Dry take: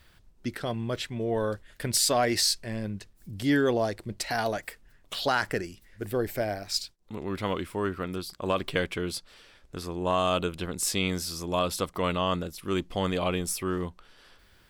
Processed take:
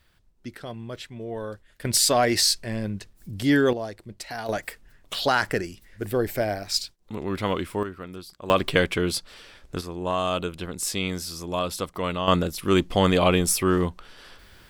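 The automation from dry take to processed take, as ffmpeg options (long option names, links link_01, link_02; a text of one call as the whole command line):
ffmpeg -i in.wav -af "asetnsamples=nb_out_samples=441:pad=0,asendcmd='1.85 volume volume 4dB;3.73 volume volume -5dB;4.49 volume volume 4dB;7.83 volume volume -5dB;8.5 volume volume 7dB;9.81 volume volume 0dB;12.28 volume volume 8.5dB',volume=-5dB" out.wav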